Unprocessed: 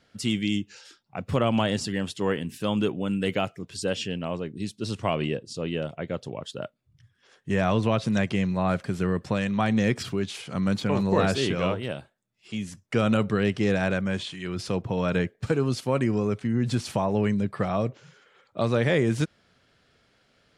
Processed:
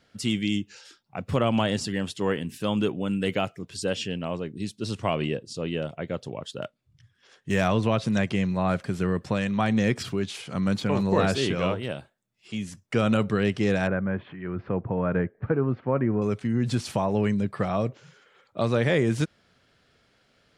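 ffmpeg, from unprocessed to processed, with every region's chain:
ffmpeg -i in.wav -filter_complex "[0:a]asettb=1/sr,asplit=3[link_01][link_02][link_03];[link_01]atrim=end=6.624[link_04];[link_02]atrim=start=6.62:end=7.68,asetpts=PTS-STARTPTS,afade=type=in:duration=0.004:curve=qsin,afade=type=out:start_time=1.056:duration=0.004:curve=qsin,aemphasis=mode=production:type=75kf,adynamicsmooth=sensitivity=7.5:basefreq=5000[link_05];[link_03]atrim=start=7.676[link_06];[link_04][link_05]acrossfade=duration=0.004:curve1=hsin:curve2=qsin[link_07];[link_07][link_06]acrossfade=duration=0.004:curve1=qsin:curve2=hsin,asettb=1/sr,asplit=3[link_08][link_09][link_10];[link_08]atrim=end=13.874[link_11];[link_09]atrim=start=13.87:end=16.22,asetpts=PTS-STARTPTS,afade=type=in:duration=0.004:curve=qsin,afade=type=out:start_time=2.346:duration=0.004:curve=qsin,lowpass=frequency=1800:width=0.5412,lowpass=frequency=1800:width=1.3066,acompressor=mode=upward:threshold=-38dB:ratio=2.5:attack=3.2:release=140:knee=2.83:detection=peak[link_12];[link_10]atrim=start=16.216[link_13];[link_11][link_12]acrossfade=duration=0.004:curve1=hsin:curve2=qsin[link_14];[link_14][link_13]acrossfade=duration=0.004:curve1=qsin:curve2=hsin" out.wav

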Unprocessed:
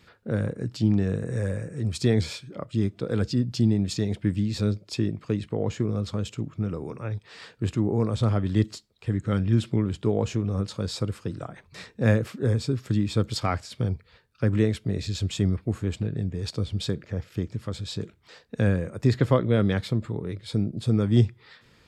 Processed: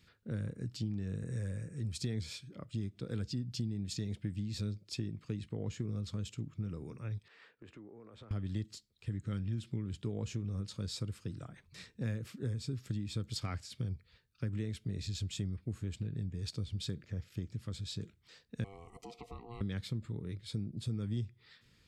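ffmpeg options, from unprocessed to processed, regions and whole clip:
ffmpeg -i in.wav -filter_complex "[0:a]asettb=1/sr,asplit=3[link_01][link_02][link_03];[link_01]atrim=end=7.284[link_04];[link_02]atrim=start=7.28:end=8.31,asetpts=PTS-STARTPTS,afade=type=in:duration=0.004:curve=qsin,afade=type=out:start_time=1.026:duration=0.004:curve=qsin,acrossover=split=310 2500:gain=0.1 1 0.1[link_05][link_06][link_07];[link_05][link_06][link_07]amix=inputs=3:normalize=0,acompressor=threshold=-36dB:ratio=10:attack=3.2:release=140:knee=1:detection=peak[link_08];[link_03]atrim=start=8.306[link_09];[link_04][link_08]acrossfade=duration=0.004:curve1=hsin:curve2=qsin[link_10];[link_10][link_09]acrossfade=duration=0.004:curve1=qsin:curve2=hsin,asettb=1/sr,asplit=3[link_11][link_12][link_13];[link_11]atrim=end=18.644[link_14];[link_12]atrim=start=18.64:end=19.61,asetpts=PTS-STARTPTS,afade=type=in:duration=0.004:curve=qsin,afade=type=out:start_time=0.966:duration=0.004:curve=qsin,acompressor=threshold=-33dB:ratio=2.5:attack=3.2:release=140:knee=1:detection=peak,aeval=exprs='val(0)*sin(2*PI*590*n/s)':channel_layout=same,asuperstop=centerf=1600:order=12:qfactor=2.7[link_15];[link_13]atrim=start=19.606[link_16];[link_14][link_15]acrossfade=duration=0.004:curve1=hsin:curve2=qsin[link_17];[link_17][link_16]acrossfade=duration=0.004:curve1=qsin:curve2=hsin,equalizer=frequency=730:width=0.55:gain=-11.5,acompressor=threshold=-27dB:ratio=6,volume=-6dB" out.wav

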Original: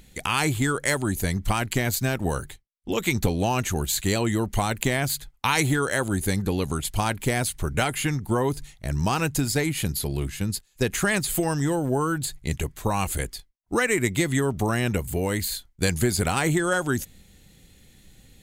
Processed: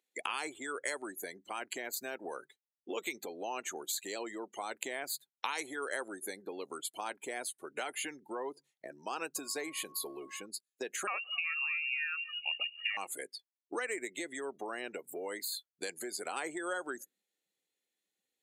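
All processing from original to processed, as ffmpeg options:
ffmpeg -i in.wav -filter_complex "[0:a]asettb=1/sr,asplit=3[link_01][link_02][link_03];[link_01]atrim=end=9.364[link_04];[link_02]atrim=start=9.36:end=10.46,asetpts=PTS-STARTPTS,afade=type=in:duration=0.004:curve=qsin,afade=type=out:start_time=1.096:duration=0.004:curve=qsin,aeval=exprs='val(0)+0.5*0.0178*sgn(val(0))':channel_layout=same,aeval=exprs='val(0)+0.00631*sin(2*PI*1100*n/s)':channel_layout=same[link_05];[link_03]atrim=start=10.456[link_06];[link_04][link_05]acrossfade=duration=0.004:curve1=hsin:curve2=qsin[link_07];[link_07][link_06]acrossfade=duration=0.004:curve1=qsin:curve2=hsin,asettb=1/sr,asplit=3[link_08][link_09][link_10];[link_08]atrim=end=11.074[link_11];[link_09]atrim=start=11.07:end=12.97,asetpts=PTS-STARTPTS,afade=type=in:duration=0.004:curve=qsin,afade=type=out:start_time=1.896:duration=0.004:curve=qsin,aecho=1:1:1.8:0.48,atrim=end_sample=83790,aecho=1:1:249|498|747|996:0.075|0.0435|0.0252|0.0146,atrim=end_sample=83790,lowpass=frequency=2500:width_type=q:width=0.5098,lowpass=frequency=2500:width_type=q:width=0.6013,lowpass=frequency=2500:width_type=q:width=0.9,lowpass=frequency=2500:width_type=q:width=2.563,afreqshift=-2900[link_12];[link_10]atrim=start=12.966[link_13];[link_11][link_12]acrossfade=duration=0.004:curve1=hsin:curve2=qsin[link_14];[link_14][link_13]acrossfade=duration=0.004:curve1=qsin:curve2=hsin,afftdn=noise_reduction=26:noise_floor=-35,acompressor=threshold=-29dB:ratio=6,highpass=frequency=350:width=0.5412,highpass=frequency=350:width=1.3066,volume=-3.5dB" out.wav

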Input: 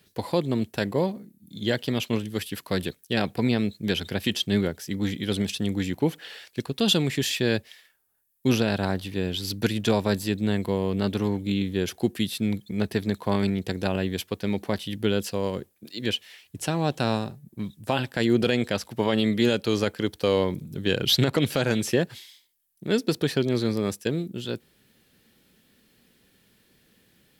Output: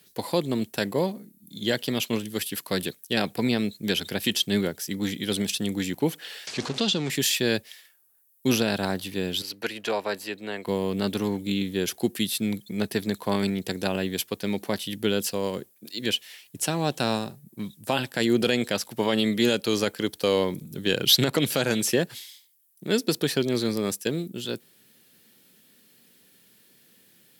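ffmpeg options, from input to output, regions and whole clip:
ffmpeg -i in.wav -filter_complex "[0:a]asettb=1/sr,asplit=3[link_01][link_02][link_03];[link_01]atrim=end=6.474[link_04];[link_02]atrim=start=6.47:end=7.1,asetpts=PTS-STARTPTS,afade=type=in:duration=0.004:curve=qsin,afade=type=out:start_time=0.626:duration=0.004:curve=qsin,aeval=exprs='val(0)+0.5*0.0355*sgn(val(0))':channel_layout=same,acrossover=split=620|4500[link_05][link_06][link_07];[link_05]acompressor=threshold=-24dB:ratio=4[link_08];[link_06]acompressor=threshold=-29dB:ratio=4[link_09];[link_07]acompressor=threshold=-36dB:ratio=4[link_10];[link_08][link_09][link_10]amix=inputs=3:normalize=0,lowpass=frequency=6700:width=0.5412,lowpass=frequency=6700:width=1.3066[link_11];[link_03]atrim=start=7.096[link_12];[link_04][link_11]acrossfade=duration=0.004:curve1=hsin:curve2=qsin[link_13];[link_13][link_12]acrossfade=duration=0.004:curve1=qsin:curve2=hsin,asettb=1/sr,asplit=3[link_14][link_15][link_16];[link_14]atrim=end=9.424[link_17];[link_15]atrim=start=9.42:end=10.67,asetpts=PTS-STARTPTS,afade=type=in:duration=0.004:curve=qsin,afade=type=out:start_time=1.246:duration=0.004:curve=qsin,acrossover=split=400 3800:gain=0.141 1 0.224[link_18][link_19][link_20];[link_18][link_19][link_20]amix=inputs=3:normalize=0,bandreject=frequency=3500:width=9.6[link_21];[link_16]atrim=start=10.666[link_22];[link_17][link_21]acrossfade=duration=0.004:curve1=hsin:curve2=qsin[link_23];[link_23][link_22]acrossfade=duration=0.004:curve1=qsin:curve2=hsin,highpass=140,aemphasis=mode=production:type=cd" out.wav

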